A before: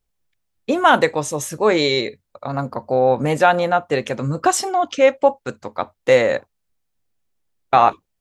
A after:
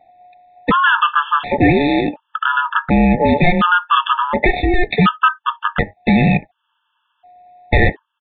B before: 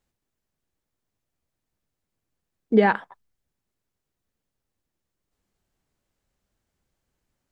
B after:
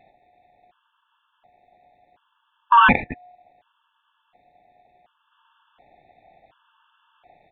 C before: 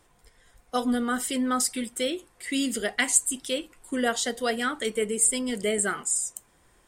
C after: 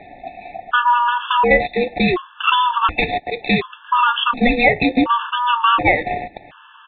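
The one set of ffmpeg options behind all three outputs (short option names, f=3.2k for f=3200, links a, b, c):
-af "equalizer=f=250:w=1.4:g=-4.5,acompressor=threshold=-36dB:ratio=2.5,aeval=exprs='0.0794*(cos(1*acos(clip(val(0)/0.0794,-1,1)))-cos(1*PI/2))+0.01*(cos(3*acos(clip(val(0)/0.0794,-1,1)))-cos(3*PI/2))+0.00631*(cos(4*acos(clip(val(0)/0.0794,-1,1)))-cos(4*PI/2))':c=same,aresample=11025,asoftclip=type=hard:threshold=-32dB,aresample=44100,aeval=exprs='val(0)*sin(2*PI*720*n/s)':c=same,apsyclip=34dB,aresample=8000,aresample=44100,afftfilt=real='re*gt(sin(2*PI*0.69*pts/sr)*(1-2*mod(floor(b*sr/1024/880),2)),0)':imag='im*gt(sin(2*PI*0.69*pts/sr)*(1-2*mod(floor(b*sr/1024/880),2)),0)':win_size=1024:overlap=0.75,volume=-2.5dB"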